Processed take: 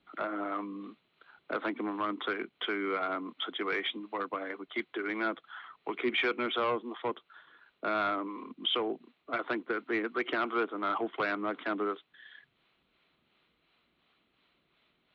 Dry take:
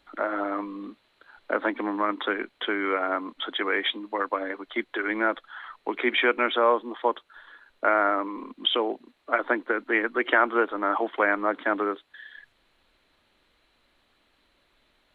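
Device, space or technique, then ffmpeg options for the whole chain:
guitar amplifier with harmonic tremolo: -filter_complex "[0:a]acrossover=split=470[a][b];[a]aeval=exprs='val(0)*(1-0.5/2+0.5/2*cos(2*PI*2.8*n/s))':c=same[c];[b]aeval=exprs='val(0)*(1-0.5/2-0.5/2*cos(2*PI*2.8*n/s))':c=same[d];[c][d]amix=inputs=2:normalize=0,asoftclip=type=tanh:threshold=-20dB,highpass=86,equalizer=f=87:t=q:w=4:g=-7,equalizer=f=160:t=q:w=4:g=6,equalizer=f=290:t=q:w=4:g=-3,equalizer=f=560:t=q:w=4:g=-7,equalizer=f=890:t=q:w=4:g=-6,equalizer=f=1.7k:t=q:w=4:g=-7,lowpass=f=3.6k:w=0.5412,lowpass=f=3.6k:w=1.3066"

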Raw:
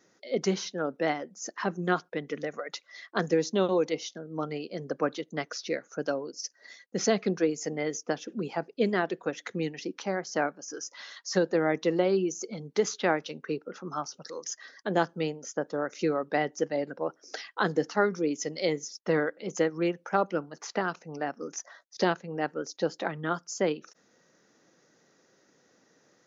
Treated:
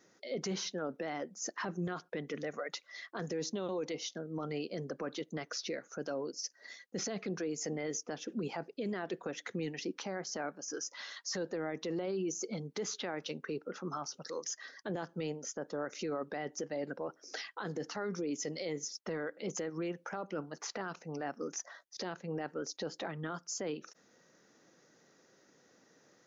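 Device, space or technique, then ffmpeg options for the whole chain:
stacked limiters: -af "alimiter=limit=-17.5dB:level=0:latency=1:release=198,alimiter=limit=-21dB:level=0:latency=1:release=112,alimiter=level_in=4dB:limit=-24dB:level=0:latency=1:release=12,volume=-4dB,volume=-1dB"

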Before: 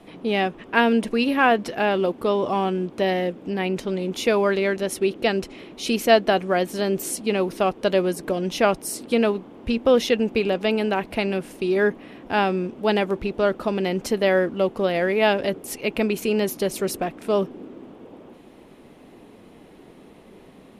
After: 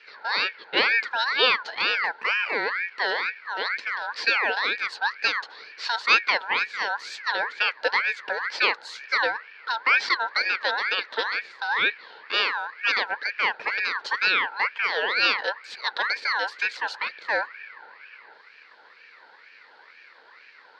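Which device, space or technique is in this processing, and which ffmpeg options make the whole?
voice changer toy: -af "aeval=exprs='val(0)*sin(2*PI*1600*n/s+1600*0.3/2.1*sin(2*PI*2.1*n/s))':c=same,highpass=410,equalizer=f=460:t=q:w=4:g=8,equalizer=f=700:t=q:w=4:g=-7,equalizer=f=1.2k:t=q:w=4:g=-5,equalizer=f=4.4k:t=q:w=4:g=9,lowpass=f=4.9k:w=0.5412,lowpass=f=4.9k:w=1.3066"

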